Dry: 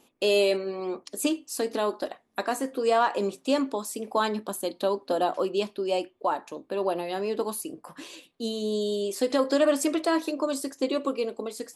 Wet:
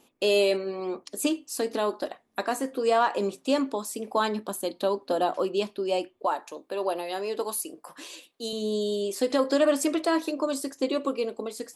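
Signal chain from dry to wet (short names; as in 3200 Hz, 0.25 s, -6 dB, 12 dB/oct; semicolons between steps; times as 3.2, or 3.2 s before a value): 6.26–8.53 tone controls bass -13 dB, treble +4 dB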